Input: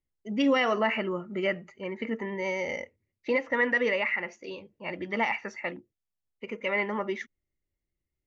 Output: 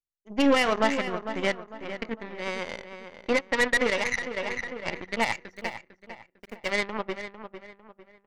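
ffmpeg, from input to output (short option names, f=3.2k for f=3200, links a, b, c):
-filter_complex "[0:a]aeval=exprs='0.188*(cos(1*acos(clip(val(0)/0.188,-1,1)))-cos(1*PI/2))+0.0531*(cos(2*acos(clip(val(0)/0.188,-1,1)))-cos(2*PI/2))+0.0237*(cos(7*acos(clip(val(0)/0.188,-1,1)))-cos(7*PI/2))':c=same,asettb=1/sr,asplit=3[a][b][c];[a]atrim=end=5.554[d];[b]atrim=start=5.55:end=6.7,asetpts=PTS-STARTPTS,afade=t=in:d=0.004:c=qsin,afade=t=out:st=1.146:d=0.004:c=qsin,aeval=exprs='val(0)*gte(abs(val(0)),0.00316)':c=same[e];[c]atrim=start=6.696[f];[d][e]acrossfade=d=0.004:c1=hsin:c2=qsin[g];[g][f]acrossfade=d=0.004:c1=qsin:c2=hsin,asplit=2[h][i];[i]adelay=451,lowpass=f=3.1k:p=1,volume=-10dB,asplit=2[j][k];[k]adelay=451,lowpass=f=3.1k:p=1,volume=0.37,asplit=2[l][m];[m]adelay=451,lowpass=f=3.1k:p=1,volume=0.37,asplit=2[n][o];[o]adelay=451,lowpass=f=3.1k:p=1,volume=0.37[p];[j][l][n][p]amix=inputs=4:normalize=0[q];[h][q]amix=inputs=2:normalize=0,asettb=1/sr,asplit=3[r][s][t];[r]atrim=end=4.364[u];[s]atrim=start=4.36:end=5.02,asetpts=PTS-STARTPTS,afade=t=in:d=0.004:c=qsin,afade=t=out:st=0.656:d=0.004:c=qsin,acontrast=73[v];[t]atrim=start=5.016[w];[u][v]acrossfade=d=0.004:c1=hsin:c2=qsin[x];[x][w]acrossfade=d=0.004:c1=qsin:c2=hsin,volume=1.5dB"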